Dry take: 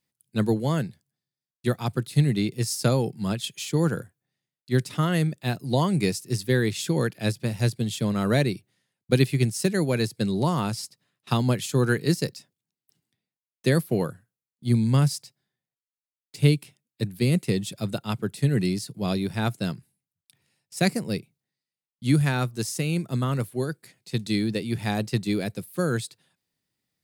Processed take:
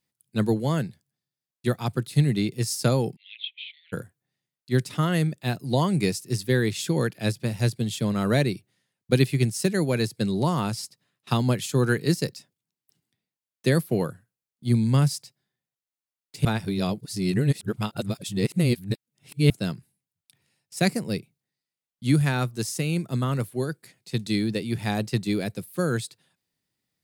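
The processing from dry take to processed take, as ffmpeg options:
ffmpeg -i in.wav -filter_complex "[0:a]asplit=3[link_01][link_02][link_03];[link_01]afade=type=out:start_time=3.15:duration=0.02[link_04];[link_02]asuperpass=centerf=2800:order=12:qfactor=1.6,afade=type=in:start_time=3.15:duration=0.02,afade=type=out:start_time=3.92:duration=0.02[link_05];[link_03]afade=type=in:start_time=3.92:duration=0.02[link_06];[link_04][link_05][link_06]amix=inputs=3:normalize=0,asplit=3[link_07][link_08][link_09];[link_07]atrim=end=16.452[link_10];[link_08]atrim=start=16.448:end=19.502,asetpts=PTS-STARTPTS,areverse[link_11];[link_09]atrim=start=19.498[link_12];[link_10][link_11]acrossfade=duration=0.004:curve1=hsin:curve2=hsin[link_13];[link_13][link_12]acrossfade=duration=0.004:curve1=hsin:curve2=hsin" out.wav

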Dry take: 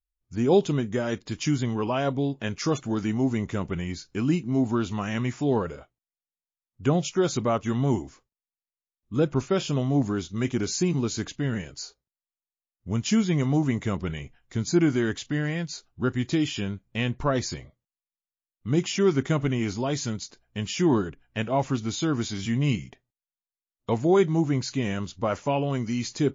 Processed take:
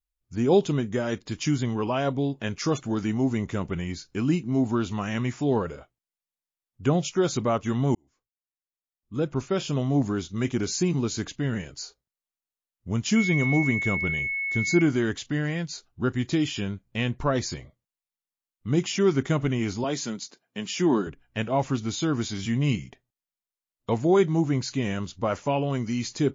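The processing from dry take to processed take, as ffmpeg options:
ffmpeg -i in.wav -filter_complex "[0:a]asettb=1/sr,asplit=3[link_01][link_02][link_03];[link_01]atrim=end=13.164[link_04];[link_02]atrim=start=13.16:end=14.82,asetpts=PTS-STARTPTS,afade=type=in:duration=0.004:curve=qsin,afade=type=out:start_time=1.656:duration=0.004:curve=qsin,aeval=exprs='val(0)+0.0501*sin(2*PI*2200*n/s)':channel_layout=same[link_05];[link_03]atrim=start=14.816[link_06];[link_04][link_05]acrossfade=duration=0.004:curve1=hsin:curve2=qsin[link_07];[link_07][link_06]acrossfade=duration=0.004:curve1=qsin:curve2=hsin,asettb=1/sr,asplit=3[link_08][link_09][link_10];[link_08]atrim=end=19.844[link_11];[link_09]atrim=start=19.84:end=21.07,asetpts=PTS-STARTPTS,afade=type=in:duration=0.004:curve=qsin,afade=type=out:start_time=1.226:duration=0.004:curve=qsin,highpass=frequency=170:width=0.5412,highpass=frequency=170:width=1.3066[link_12];[link_10]atrim=start=21.066[link_13];[link_11][link_12]acrossfade=duration=0.004:curve1=hsin:curve2=qsin[link_14];[link_14][link_13]acrossfade=duration=0.004:curve1=qsin:curve2=hsin,asplit=2[link_15][link_16];[link_15]atrim=end=7.95,asetpts=PTS-STARTPTS,afade=type=out:start_time=7.946:duration=0.004:curve=hsin[link_17];[link_16]atrim=start=7.95,asetpts=PTS-STARTPTS,afade=type=in:duration=1.96[link_18];[link_17][link_18]concat=n=2:v=0:a=1" out.wav

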